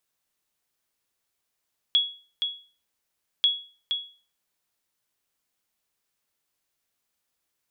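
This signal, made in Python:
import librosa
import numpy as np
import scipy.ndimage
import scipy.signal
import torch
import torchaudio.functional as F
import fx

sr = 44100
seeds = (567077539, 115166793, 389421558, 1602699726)

y = fx.sonar_ping(sr, hz=3350.0, decay_s=0.38, every_s=1.49, pings=2, echo_s=0.47, echo_db=-6.5, level_db=-13.5)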